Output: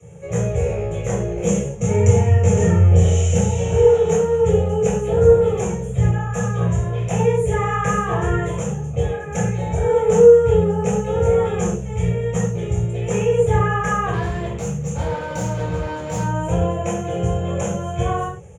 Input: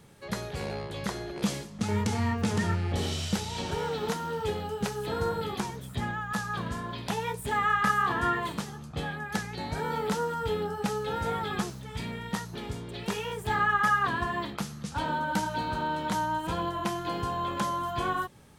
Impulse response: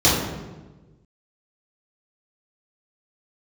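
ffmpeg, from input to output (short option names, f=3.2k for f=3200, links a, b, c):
-filter_complex "[0:a]firequalizer=gain_entry='entry(180,0);entry(260,-22);entry(440,8);entry(1000,-8);entry(2700,0);entry(4400,-30);entry(6600,9);entry(14000,-17)':delay=0.05:min_phase=1,asettb=1/sr,asplit=3[a][b][c];[a]atrim=end=14.134[d];[b]atrim=start=14.13:end=16.22,asetpts=PTS-STARTPTS,afade=t=in:d=0.004:c=qsin,afade=t=out:st=2.086:d=0.004:c=qsin,asoftclip=type=hard:threshold=-32dB[e];[c]atrim=start=16.216[f];[d][e]acrossfade=d=0.004:c1=hsin:c2=qsin[g];[g][f]acrossfade=d=0.004:c1=qsin:c2=hsin[h];[1:a]atrim=start_sample=2205,atrim=end_sample=6174[i];[h][i]afir=irnorm=-1:irlink=0,volume=-12.5dB"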